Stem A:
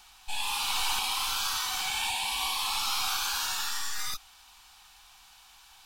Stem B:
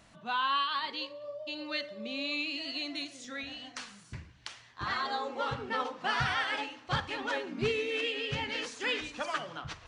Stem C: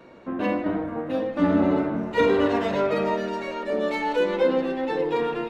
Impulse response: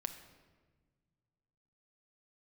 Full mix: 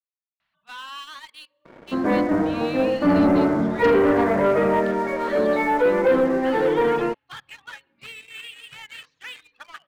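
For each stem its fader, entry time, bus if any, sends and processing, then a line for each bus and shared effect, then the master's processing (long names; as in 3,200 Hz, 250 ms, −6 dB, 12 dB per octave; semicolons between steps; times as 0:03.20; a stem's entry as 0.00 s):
muted
−6.5 dB, 0.40 s, bus A, send −15.5 dB, reverb reduction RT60 1 s; high-shelf EQ 2,100 Hz −2.5 dB
−1.5 dB, 1.65 s, no bus, no send, Butterworth low-pass 2,300 Hz 72 dB per octave
bus A: 0.0 dB, high-pass filter 1,200 Hz 12 dB per octave; brickwall limiter −35 dBFS, peak gain reduction 6.5 dB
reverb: on, RT60 1.5 s, pre-delay 6 ms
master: low-pass filter 3,900 Hz 24 dB per octave; leveller curve on the samples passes 2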